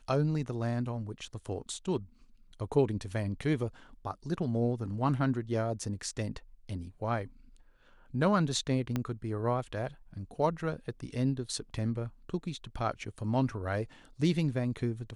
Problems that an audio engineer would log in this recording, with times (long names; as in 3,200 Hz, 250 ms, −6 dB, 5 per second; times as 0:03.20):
0:08.96: click −18 dBFS